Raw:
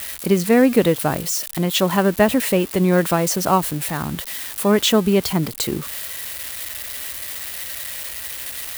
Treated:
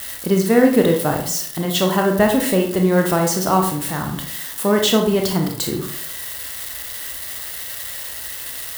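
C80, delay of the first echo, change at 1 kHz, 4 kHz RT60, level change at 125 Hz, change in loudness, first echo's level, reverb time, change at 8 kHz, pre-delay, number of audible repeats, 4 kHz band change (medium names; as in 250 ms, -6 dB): 11.0 dB, no echo, +1.0 dB, 0.40 s, +0.5 dB, +0.5 dB, no echo, 0.60 s, 0.0 dB, 26 ms, no echo, 0.0 dB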